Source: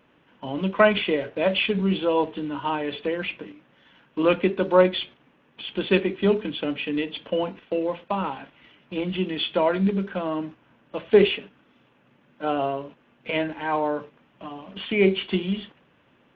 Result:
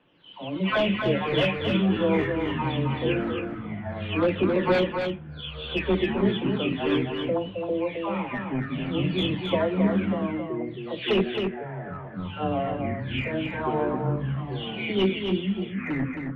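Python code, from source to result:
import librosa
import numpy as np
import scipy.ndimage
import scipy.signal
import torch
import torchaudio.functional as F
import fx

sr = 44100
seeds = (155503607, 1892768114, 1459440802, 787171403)

y = fx.spec_delay(x, sr, highs='early', ms=497)
y = fx.high_shelf_res(y, sr, hz=2500.0, db=8.5, q=1.5)
y = 10.0 ** (-13.5 / 20.0) * (np.abs((y / 10.0 ** (-13.5 / 20.0) + 3.0) % 4.0 - 2.0) - 1.0)
y = fx.air_absorb(y, sr, metres=460.0)
y = fx.echo_pitch(y, sr, ms=192, semitones=-6, count=3, db_per_echo=-6.0)
y = y + 10.0 ** (-5.5 / 20.0) * np.pad(y, (int(267 * sr / 1000.0), 0))[:len(y)]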